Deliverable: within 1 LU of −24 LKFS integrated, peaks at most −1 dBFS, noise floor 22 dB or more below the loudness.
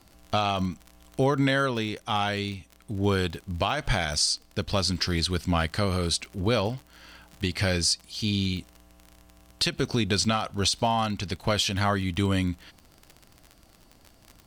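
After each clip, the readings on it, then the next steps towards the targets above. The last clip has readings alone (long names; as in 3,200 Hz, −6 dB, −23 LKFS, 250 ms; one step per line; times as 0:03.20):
crackle rate 43 per second; integrated loudness −26.5 LKFS; sample peak −12.0 dBFS; target loudness −24.0 LKFS
→ click removal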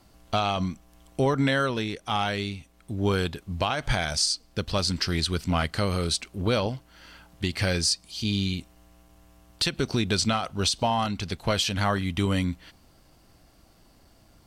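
crackle rate 0 per second; integrated loudness −26.5 LKFS; sample peak −12.0 dBFS; target loudness −24.0 LKFS
→ level +2.5 dB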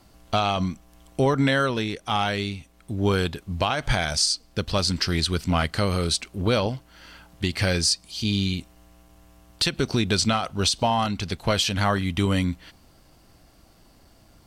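integrated loudness −24.0 LKFS; sample peak −9.5 dBFS; background noise floor −56 dBFS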